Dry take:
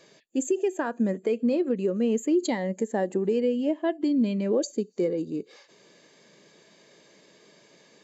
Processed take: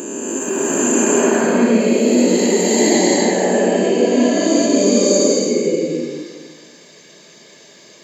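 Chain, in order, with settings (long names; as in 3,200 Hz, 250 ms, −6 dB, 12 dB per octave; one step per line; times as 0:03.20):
peak hold with a rise ahead of every peak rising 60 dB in 2.99 s
high-shelf EQ 4,500 Hz +9.5 dB
slow-attack reverb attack 750 ms, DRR −9.5 dB
level −3.5 dB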